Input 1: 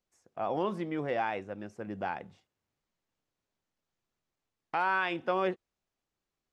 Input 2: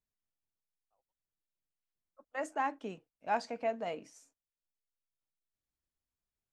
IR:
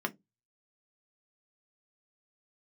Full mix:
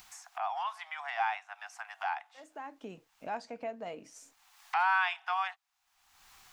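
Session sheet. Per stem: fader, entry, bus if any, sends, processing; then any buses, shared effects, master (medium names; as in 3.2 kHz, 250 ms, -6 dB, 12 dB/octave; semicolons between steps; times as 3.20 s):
+2.0 dB, 0.00 s, no send, steep high-pass 720 Hz 96 dB/octave
-6.0 dB, 0.00 s, no send, auto duck -18 dB, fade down 0.35 s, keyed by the first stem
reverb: none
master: upward compressor, threshold -34 dBFS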